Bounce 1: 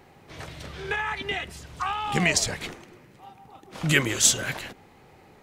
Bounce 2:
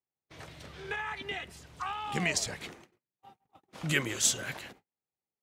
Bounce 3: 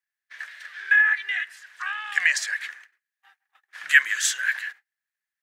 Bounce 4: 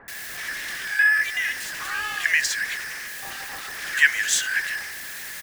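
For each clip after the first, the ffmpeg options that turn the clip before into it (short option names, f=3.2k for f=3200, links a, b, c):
-af "highpass=f=72:p=1,agate=range=-39dB:threshold=-46dB:ratio=16:detection=peak,volume=-7.5dB"
-af "highpass=f=1.7k:t=q:w=11,volume=1.5dB"
-filter_complex "[0:a]aeval=exprs='val(0)+0.5*0.0447*sgn(val(0))':c=same,acrossover=split=1200[a][b];[b]adelay=80[c];[a][c]amix=inputs=2:normalize=0"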